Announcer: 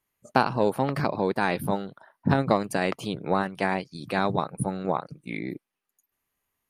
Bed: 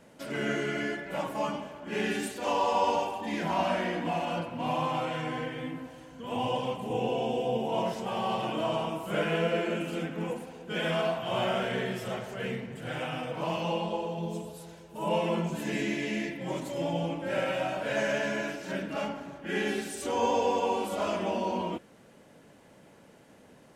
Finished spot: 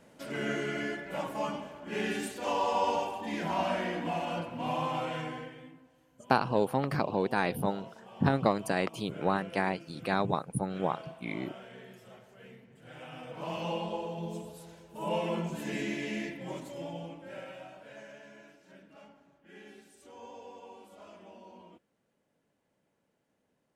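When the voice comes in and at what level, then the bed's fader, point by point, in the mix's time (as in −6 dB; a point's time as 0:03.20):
5.95 s, −4.0 dB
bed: 0:05.20 −2.5 dB
0:05.82 −18 dB
0:12.65 −18 dB
0:13.63 −3.5 dB
0:16.29 −3.5 dB
0:18.17 −21.5 dB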